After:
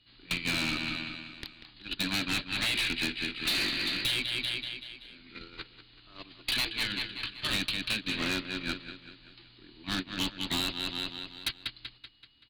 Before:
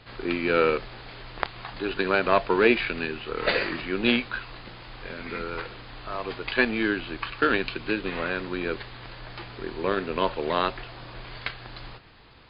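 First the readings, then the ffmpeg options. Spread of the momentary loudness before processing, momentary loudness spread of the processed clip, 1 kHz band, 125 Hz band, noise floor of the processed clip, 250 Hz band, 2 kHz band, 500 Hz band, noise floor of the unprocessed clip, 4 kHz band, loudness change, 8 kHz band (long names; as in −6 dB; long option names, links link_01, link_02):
19 LU, 18 LU, −14.0 dB, −4.0 dB, −58 dBFS, −8.5 dB, −5.5 dB, −20.0 dB, −44 dBFS, +5.0 dB, −4.5 dB, can't be measured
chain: -filter_complex "[0:a]afftfilt=real='re*lt(hypot(re,im),0.2)':imag='im*lt(hypot(re,im),0.2)':win_size=1024:overlap=0.75,lowpass=frequency=4100:width_type=q:width=3.8,aeval=exprs='val(0)+0.00355*sin(2*PI*2900*n/s)':channel_layout=same,asplit=2[link_01][link_02];[link_02]asoftclip=type=tanh:threshold=-19dB,volume=-3dB[link_03];[link_01][link_03]amix=inputs=2:normalize=0,agate=range=-31dB:threshold=-22dB:ratio=16:detection=peak,aecho=1:1:191|382|573|764|955:0.211|0.101|0.0487|0.0234|0.0112,acompressor=threshold=-30dB:ratio=12,firequalizer=gain_entry='entry(160,0);entry(300,6);entry(450,-10);entry(2400,1)':delay=0.05:min_phase=1,asoftclip=type=hard:threshold=-32.5dB,volume=7dB"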